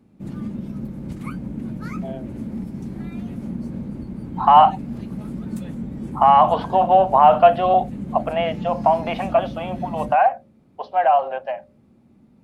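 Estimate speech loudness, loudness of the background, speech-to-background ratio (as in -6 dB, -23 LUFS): -17.5 LUFS, -31.5 LUFS, 14.0 dB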